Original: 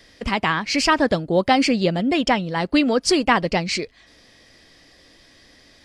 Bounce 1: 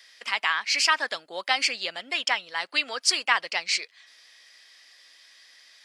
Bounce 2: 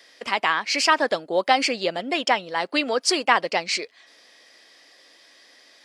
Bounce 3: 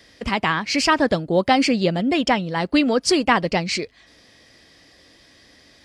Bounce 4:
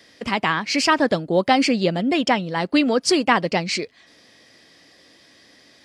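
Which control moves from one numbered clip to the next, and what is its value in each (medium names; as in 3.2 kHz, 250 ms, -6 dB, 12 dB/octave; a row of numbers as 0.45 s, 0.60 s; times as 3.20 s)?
high-pass, cutoff frequency: 1.4 kHz, 510 Hz, 47 Hz, 140 Hz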